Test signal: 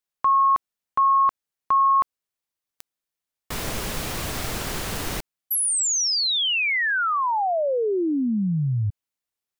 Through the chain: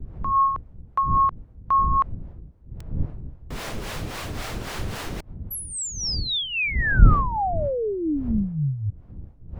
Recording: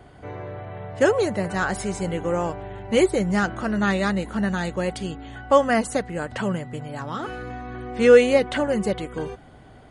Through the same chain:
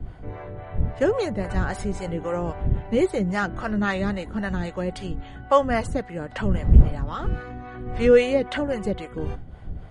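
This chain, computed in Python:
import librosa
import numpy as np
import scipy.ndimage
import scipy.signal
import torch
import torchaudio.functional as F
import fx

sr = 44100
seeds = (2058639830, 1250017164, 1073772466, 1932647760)

y = fx.dmg_wind(x, sr, seeds[0], corner_hz=83.0, level_db=-25.0)
y = fx.high_shelf(y, sr, hz=6900.0, db=-11.5)
y = fx.harmonic_tremolo(y, sr, hz=3.7, depth_pct=70, crossover_hz=490.0)
y = y * librosa.db_to_amplitude(1.0)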